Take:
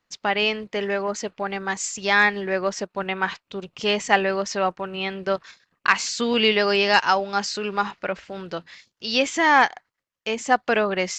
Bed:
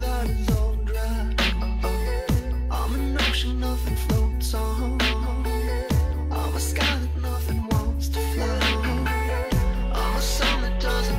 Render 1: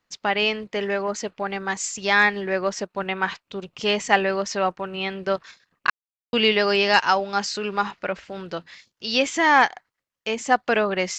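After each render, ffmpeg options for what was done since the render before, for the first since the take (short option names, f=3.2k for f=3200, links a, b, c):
-filter_complex "[0:a]asplit=3[a][b][c];[a]atrim=end=5.9,asetpts=PTS-STARTPTS,afade=t=out:st=5.896:d=0.004:c=hsin[d];[b]atrim=start=5.9:end=6.33,asetpts=PTS-STARTPTS,volume=0[e];[c]atrim=start=6.33,asetpts=PTS-STARTPTS,afade=t=in:d=0.004:c=hsin[f];[d][e][f]concat=n=3:v=0:a=1"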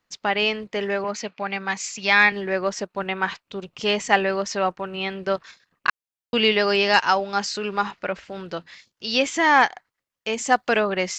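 -filter_complex "[0:a]asettb=1/sr,asplit=3[a][b][c];[a]atrim=end=1.044[d];[b]atrim=start=1.04:end=2.32,asetpts=PTS-STARTPTS,afade=t=in:d=0.004:c=qsin,afade=t=out:st=1.276:d=0.004:c=qsin,highpass=f=130:w=0.5412,highpass=f=130:w=1.3066,equalizer=f=350:t=q:w=4:g=-7,equalizer=f=500:t=q:w=4:g=-3,equalizer=f=2.4k:t=q:w=4:g=8,equalizer=f=4.4k:t=q:w=4:g=3,lowpass=f=6.8k:w=0.5412,lowpass=f=6.8k:w=1.3066[e];[c]atrim=start=2.316[f];[d][e]acrossfade=d=0.004:c1=hsin:c2=qsin[g];[g][f]acrossfade=d=0.004:c1=qsin:c2=hsin,asettb=1/sr,asplit=3[h][i][j];[h]atrim=end=10.334[k];[i]atrim=start=10.33:end=10.8,asetpts=PTS-STARTPTS,afade=t=in:d=0.004:c=qsin,afade=t=out:st=0.466:d=0.004:c=qsin,highshelf=f=5.3k:g=8[l];[j]atrim=start=10.796[m];[k][l]acrossfade=d=0.004:c1=hsin:c2=qsin[n];[n][m]acrossfade=d=0.004:c1=qsin:c2=hsin"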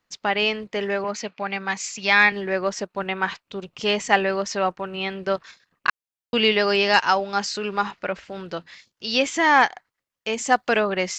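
-af anull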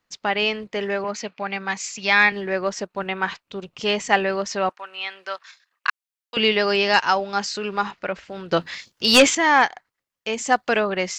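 -filter_complex "[0:a]asettb=1/sr,asplit=3[a][b][c];[a]atrim=end=4.694[d];[b]atrim=start=4.69:end=6.37,asetpts=PTS-STARTPTS,afade=t=in:d=0.004:c=qsin,afade=t=out:st=1.676:d=0.004:c=qsin,highpass=1k[e];[c]atrim=start=6.366[f];[d][e]acrossfade=d=0.004:c1=hsin:c2=qsin[g];[g][f]acrossfade=d=0.004:c1=qsin:c2=hsin,asettb=1/sr,asplit=3[h][i][j];[h]atrim=end=8.524[k];[i]atrim=start=8.52:end=9.35,asetpts=PTS-STARTPTS,afade=t=in:d=0.004:c=qsin,afade=t=out:st=0.826:d=0.004:c=qsin,aeval=exprs='0.473*sin(PI/2*2.24*val(0)/0.473)':c=same[l];[j]atrim=start=9.346[m];[k][l]acrossfade=d=0.004:c1=hsin:c2=qsin[n];[n][m]acrossfade=d=0.004:c1=qsin:c2=hsin"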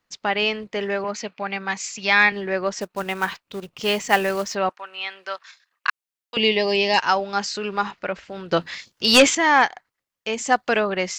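-filter_complex "[0:a]asettb=1/sr,asplit=3[a][b][c];[a]atrim=end=2.814[d];[b]atrim=start=2.81:end=4.55,asetpts=PTS-STARTPTS,afade=t=in:d=0.004:c=qsin,afade=t=out:st=1.736:d=0.004:c=qsin,acrusher=bits=4:mode=log:mix=0:aa=0.000001[e];[c]atrim=start=4.546[f];[d][e]acrossfade=d=0.004:c1=hsin:c2=qsin[g];[g][f]acrossfade=d=0.004:c1=qsin:c2=hsin,asettb=1/sr,asplit=3[h][i][j];[h]atrim=end=6.374[k];[i]atrim=start=6.37:end=6.98,asetpts=PTS-STARTPTS,afade=t=in:d=0.004:c=qsin,afade=t=out:st=0.606:d=0.004:c=qsin,asuperstop=centerf=1400:order=4:qfactor=1.7[l];[j]atrim=start=6.976[m];[k][l]acrossfade=d=0.004:c1=hsin:c2=qsin[n];[n][m]acrossfade=d=0.004:c1=qsin:c2=hsin"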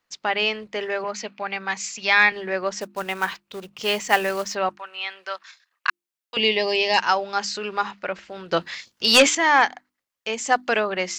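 -af "lowshelf=f=320:g=-6,bandreject=f=50:t=h:w=6,bandreject=f=100:t=h:w=6,bandreject=f=150:t=h:w=6,bandreject=f=200:t=h:w=6,bandreject=f=250:t=h:w=6,bandreject=f=300:t=h:w=6,bandreject=f=350:t=h:w=6"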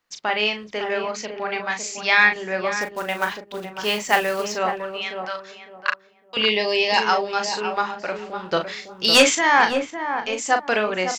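-filter_complex "[0:a]asplit=2[a][b];[b]adelay=38,volume=-7dB[c];[a][c]amix=inputs=2:normalize=0,asplit=2[d][e];[e]adelay=556,lowpass=f=900:p=1,volume=-5.5dB,asplit=2[f][g];[g]adelay=556,lowpass=f=900:p=1,volume=0.28,asplit=2[h][i];[i]adelay=556,lowpass=f=900:p=1,volume=0.28,asplit=2[j][k];[k]adelay=556,lowpass=f=900:p=1,volume=0.28[l];[f][h][j][l]amix=inputs=4:normalize=0[m];[d][m]amix=inputs=2:normalize=0"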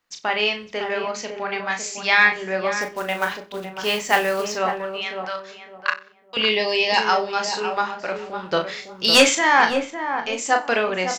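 -filter_complex "[0:a]asplit=2[a][b];[b]adelay=26,volume=-11dB[c];[a][c]amix=inputs=2:normalize=0,aecho=1:1:92|184:0.0891|0.0241"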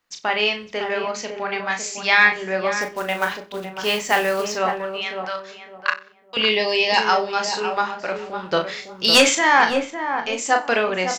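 -af "volume=1dB,alimiter=limit=-3dB:level=0:latency=1"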